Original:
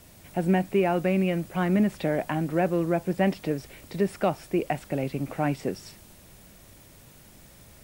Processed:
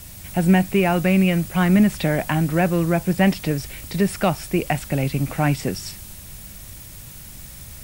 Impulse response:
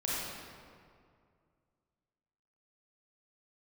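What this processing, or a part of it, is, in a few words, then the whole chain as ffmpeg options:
smiley-face EQ: -af "lowshelf=frequency=180:gain=6.5,equalizer=frequency=410:width_type=o:width=2.2:gain=-8,highshelf=frequency=5200:gain=6.5,volume=9dB"

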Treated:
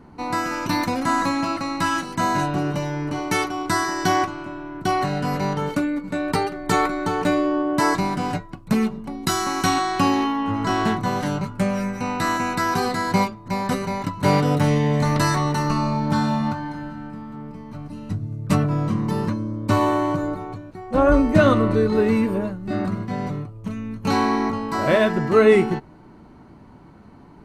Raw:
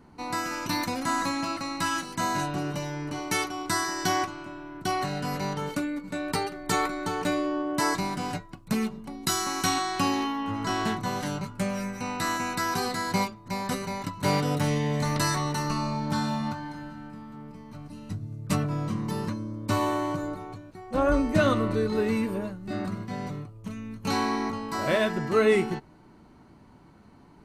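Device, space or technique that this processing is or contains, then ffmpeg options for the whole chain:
behind a face mask: -af "highshelf=frequency=2800:gain=-8,volume=7.5dB"

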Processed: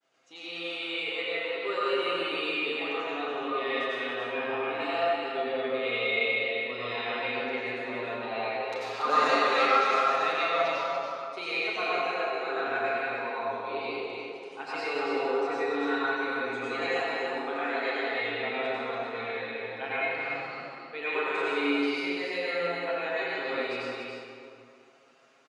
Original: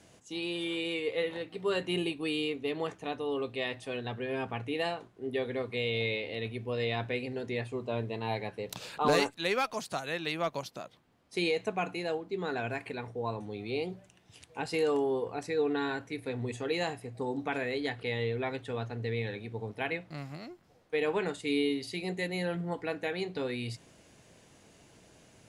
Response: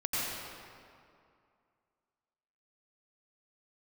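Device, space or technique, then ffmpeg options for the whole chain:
station announcement: -filter_complex "[0:a]agate=range=-33dB:threshold=-52dB:ratio=3:detection=peak,asettb=1/sr,asplit=3[link_01][link_02][link_03];[link_01]atrim=end=17.034[link_04];[link_02]atrim=start=17.03:end=18.1,asetpts=PTS-STARTPTS,afade=type=in:duration=0.004:curve=qsin,afade=type=out:start_time=1.066:duration=0.004:curve=qsin,highpass=260[link_05];[link_03]atrim=start=18.096[link_06];[link_04][link_05]acrossfade=duration=0.004:curve1=hsin:curve2=qsin[link_07];[link_07][link_06]acrossfade=duration=0.004:curve1=qsin:curve2=hsin,highpass=460,lowpass=4800,equalizer=frequency=1300:width_type=o:width=0.23:gain=12,aecho=1:1:7.4:0.6,aecho=1:1:34.99|285.7:0.282|0.562[link_08];[1:a]atrim=start_sample=2205[link_09];[link_08][link_09]afir=irnorm=-1:irlink=0,volume=-4.5dB"

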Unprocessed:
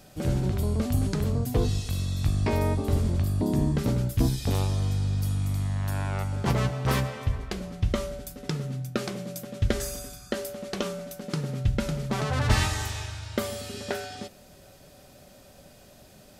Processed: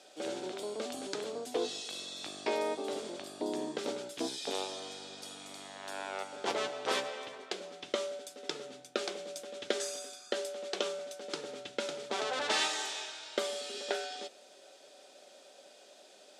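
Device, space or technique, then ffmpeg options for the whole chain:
phone speaker on a table: -af "highpass=frequency=360:width=0.5412,highpass=frequency=360:width=1.3066,equalizer=frequency=1100:width_type=q:width=4:gain=-5,equalizer=frequency=1900:width_type=q:width=4:gain=-3,equalizer=frequency=3500:width_type=q:width=4:gain=5,lowpass=frequency=8900:width=0.5412,lowpass=frequency=8900:width=1.3066,volume=-2dB"

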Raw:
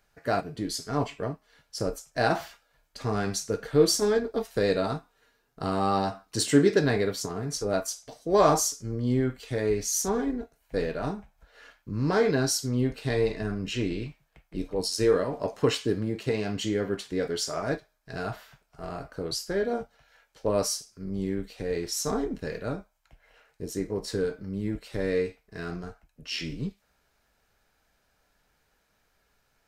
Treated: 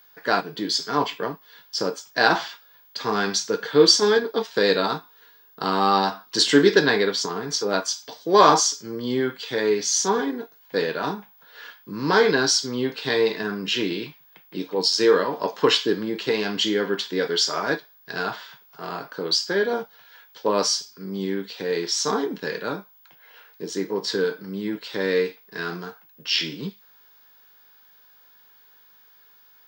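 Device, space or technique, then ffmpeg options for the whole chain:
old television with a line whistle: -af "highpass=frequency=190:width=0.5412,highpass=frequency=190:width=1.3066,equalizer=frequency=250:width_type=q:width=4:gain=-6,equalizer=frequency=640:width_type=q:width=4:gain=-7,equalizer=frequency=970:width_type=q:width=4:gain=7,equalizer=frequency=1600:width_type=q:width=4:gain=5,equalizer=frequency=3400:width_type=q:width=4:gain=10,equalizer=frequency=4800:width_type=q:width=4:gain=6,lowpass=frequency=6800:width=0.5412,lowpass=frequency=6800:width=1.3066,aeval=exprs='val(0)+0.00126*sin(2*PI*15625*n/s)':channel_layout=same,volume=6dB"

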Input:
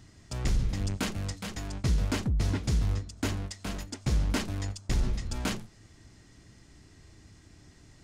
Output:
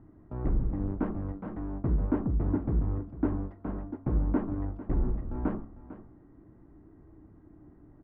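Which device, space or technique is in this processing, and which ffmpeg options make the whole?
under water: -af "lowpass=frequency=1200:width=0.5412,lowpass=frequency=1200:width=1.3066,equalizer=frequency=96:width_type=o:width=0.77:gain=-4,equalizer=frequency=310:width_type=o:width=0.56:gain=8.5,aecho=1:1:450:0.178,bandreject=frequency=68.72:width_type=h:width=4,bandreject=frequency=137.44:width_type=h:width=4,bandreject=frequency=206.16:width_type=h:width=4,bandreject=frequency=274.88:width_type=h:width=4,bandreject=frequency=343.6:width_type=h:width=4,bandreject=frequency=412.32:width_type=h:width=4,bandreject=frequency=481.04:width_type=h:width=4,bandreject=frequency=549.76:width_type=h:width=4,bandreject=frequency=618.48:width_type=h:width=4,bandreject=frequency=687.2:width_type=h:width=4,bandreject=frequency=755.92:width_type=h:width=4,bandreject=frequency=824.64:width_type=h:width=4,bandreject=frequency=893.36:width_type=h:width=4,bandreject=frequency=962.08:width_type=h:width=4,bandreject=frequency=1030.8:width_type=h:width=4,bandreject=frequency=1099.52:width_type=h:width=4,bandreject=frequency=1168.24:width_type=h:width=4,bandreject=frequency=1236.96:width_type=h:width=4,bandreject=frequency=1305.68:width_type=h:width=4,bandreject=frequency=1374.4:width_type=h:width=4,bandreject=frequency=1443.12:width_type=h:width=4,bandreject=frequency=1511.84:width_type=h:width=4,bandreject=frequency=1580.56:width_type=h:width=4"

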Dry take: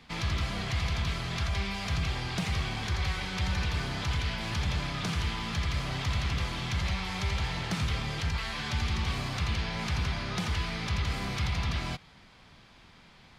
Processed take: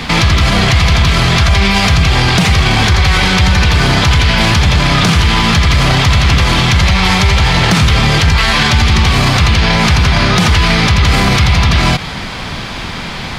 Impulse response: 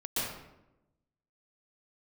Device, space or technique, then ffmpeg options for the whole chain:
loud club master: -af "acompressor=threshold=-32dB:ratio=2.5,asoftclip=type=hard:threshold=-25.5dB,alimiter=level_in=34.5dB:limit=-1dB:release=50:level=0:latency=1,volume=-1dB"

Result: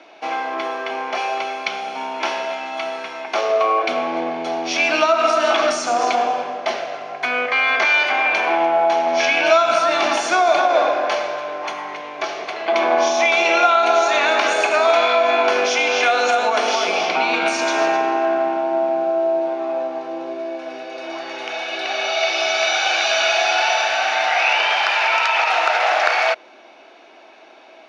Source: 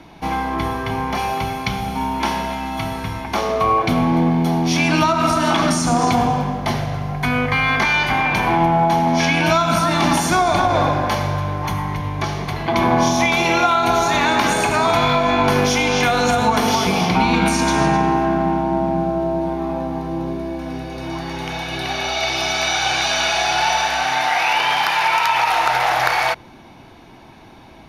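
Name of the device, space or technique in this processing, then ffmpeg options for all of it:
phone speaker on a table: -af "highpass=frequency=360:width=0.5412,highpass=frequency=360:width=1.3066,equalizer=frequency=630:width_type=q:width=4:gain=8,equalizer=frequency=940:width_type=q:width=4:gain=-5,equalizer=frequency=1400:width_type=q:width=4:gain=4,equalizer=frequency=2600:width_type=q:width=4:gain=6,lowpass=frequency=6900:width=0.5412,lowpass=frequency=6900:width=1.3066,volume=-1.5dB"

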